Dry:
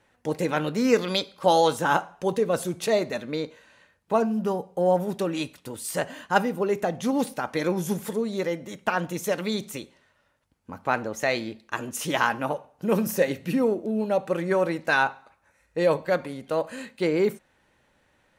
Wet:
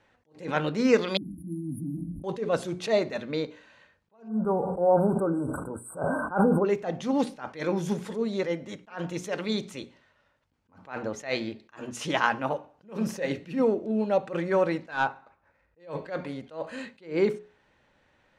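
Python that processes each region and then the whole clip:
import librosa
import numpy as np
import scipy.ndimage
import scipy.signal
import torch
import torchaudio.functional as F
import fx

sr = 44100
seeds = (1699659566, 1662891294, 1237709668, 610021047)

y = fx.chain(x, sr, fx.brickwall_bandstop(low_hz=330.0, high_hz=9300.0),
    fx.sustainer(db_per_s=21.0), at=(1.17, 2.24))
y = fx.chain(y, sr, fx.brickwall_bandstop(low_hz=1600.0, high_hz=7700.0),
    fx.sustainer(db_per_s=28.0), at=(4.28, 6.65))
y = fx.chain(y, sr, fx.median_filter(points=9),
    fx.high_shelf(hz=2500.0, db=-8.5),
    fx.overload_stage(gain_db=16.5), at=(14.91, 15.8))
y = scipy.signal.sosfilt(scipy.signal.butter(2, 5400.0, 'lowpass', fs=sr, output='sos'), y)
y = fx.hum_notches(y, sr, base_hz=60, count=7)
y = fx.attack_slew(y, sr, db_per_s=180.0)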